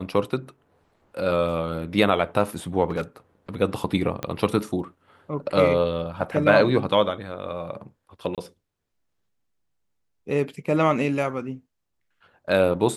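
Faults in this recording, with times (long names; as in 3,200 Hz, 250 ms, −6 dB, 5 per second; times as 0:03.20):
0:02.89–0:03.01: clipping −21 dBFS
0:04.23: click −14 dBFS
0:08.35–0:08.38: drop-out 27 ms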